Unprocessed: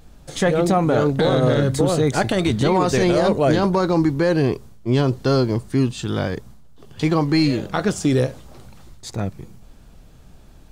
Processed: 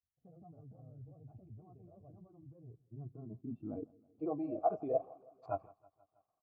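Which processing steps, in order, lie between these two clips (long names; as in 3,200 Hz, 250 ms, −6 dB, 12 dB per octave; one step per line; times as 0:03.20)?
noise reduction from a noise print of the clip's start 16 dB
downward expander −47 dBFS
reversed playback
downward compressor, threshold −28 dBFS, peak gain reduction 14 dB
reversed playback
brickwall limiter −26.5 dBFS, peak gain reduction 7 dB
formant filter a
time stretch by overlap-add 0.6×, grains 84 ms
low-pass filter sweep 100 Hz → 1,100 Hz, 0:02.55–0:05.40
repeating echo 161 ms, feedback 60%, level −23.5 dB
level +14 dB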